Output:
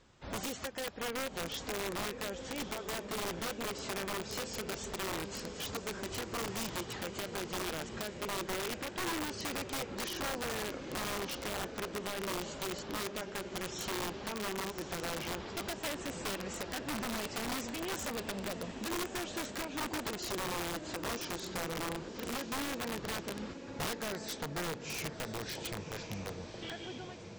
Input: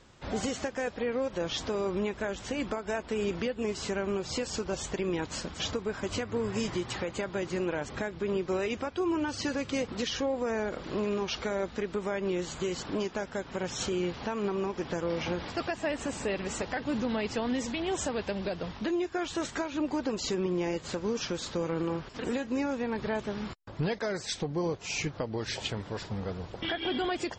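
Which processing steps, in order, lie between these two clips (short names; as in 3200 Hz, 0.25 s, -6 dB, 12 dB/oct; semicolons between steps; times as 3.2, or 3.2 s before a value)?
ending faded out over 1.18 s; diffused feedback echo 1.136 s, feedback 57%, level -9 dB; wrapped overs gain 24.5 dB; gain -6.5 dB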